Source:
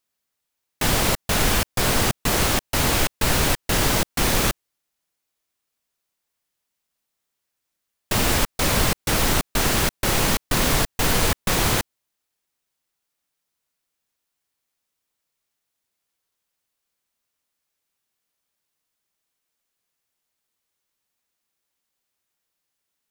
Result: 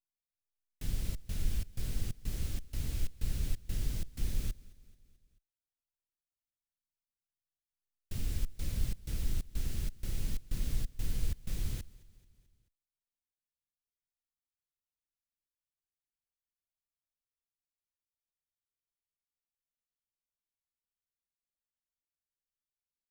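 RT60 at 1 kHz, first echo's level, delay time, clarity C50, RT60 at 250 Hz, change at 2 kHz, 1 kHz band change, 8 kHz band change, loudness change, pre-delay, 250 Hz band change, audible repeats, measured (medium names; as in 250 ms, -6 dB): no reverb, -22.5 dB, 218 ms, no reverb, no reverb, -30.0 dB, -36.0 dB, -24.5 dB, -19.0 dB, no reverb, -20.5 dB, 3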